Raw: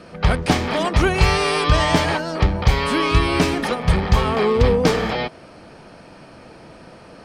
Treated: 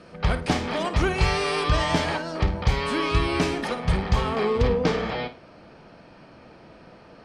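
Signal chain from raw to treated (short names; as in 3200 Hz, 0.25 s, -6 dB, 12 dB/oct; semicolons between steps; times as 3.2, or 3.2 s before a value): LPF 9700 Hz 12 dB/oct, from 4.66 s 5000 Hz; flutter echo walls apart 9.1 m, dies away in 0.27 s; gain -6 dB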